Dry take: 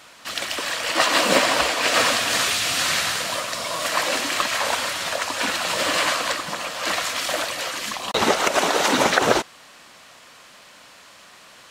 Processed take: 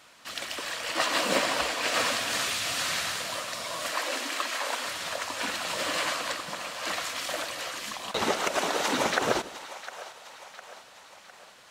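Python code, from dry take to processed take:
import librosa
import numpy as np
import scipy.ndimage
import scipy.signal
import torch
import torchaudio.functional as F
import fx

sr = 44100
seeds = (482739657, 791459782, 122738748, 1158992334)

p1 = fx.cheby1_highpass(x, sr, hz=230.0, order=10, at=(3.92, 4.86))
p2 = p1 + fx.echo_split(p1, sr, split_hz=540.0, low_ms=84, high_ms=706, feedback_pct=52, wet_db=-14.5, dry=0)
y = p2 * 10.0 ** (-8.0 / 20.0)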